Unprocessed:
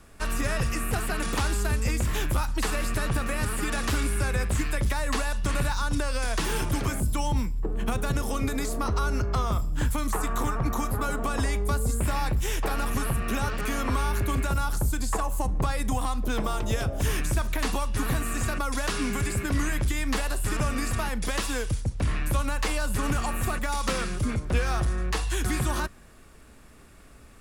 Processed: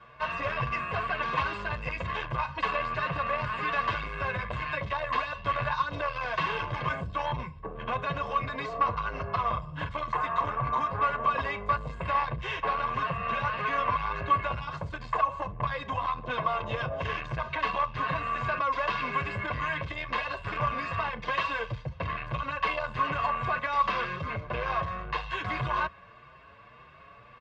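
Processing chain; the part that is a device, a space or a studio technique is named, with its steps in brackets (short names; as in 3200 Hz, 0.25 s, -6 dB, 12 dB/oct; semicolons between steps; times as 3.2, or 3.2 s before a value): barber-pole flanger into a guitar amplifier (endless flanger 6.5 ms +1.8 Hz; soft clip -27 dBFS, distortion -13 dB; speaker cabinet 95–3700 Hz, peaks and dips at 140 Hz +6 dB, 390 Hz -6 dB, 750 Hz +8 dB, 1100 Hz +10 dB, 1900 Hz +4 dB, 2700 Hz +5 dB); low shelf 250 Hz -4 dB; bell 9700 Hz -6.5 dB 0.29 oct; comb 1.9 ms, depth 64%; gain +1.5 dB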